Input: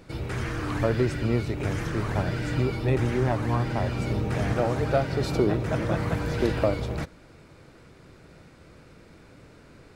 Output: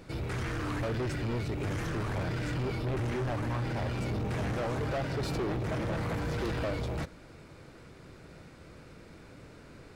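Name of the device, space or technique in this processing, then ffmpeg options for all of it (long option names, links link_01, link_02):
saturation between pre-emphasis and de-emphasis: -af "highshelf=frequency=5100:gain=8,asoftclip=type=tanh:threshold=-29dB,highshelf=frequency=5100:gain=-8"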